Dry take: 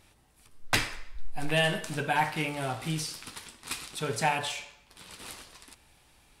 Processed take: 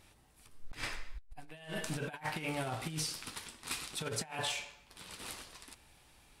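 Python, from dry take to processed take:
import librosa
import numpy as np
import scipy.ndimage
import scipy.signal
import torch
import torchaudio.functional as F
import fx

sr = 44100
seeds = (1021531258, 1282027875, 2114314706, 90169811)

y = fx.over_compress(x, sr, threshold_db=-33.0, ratio=-0.5)
y = y * 10.0 ** (-5.5 / 20.0)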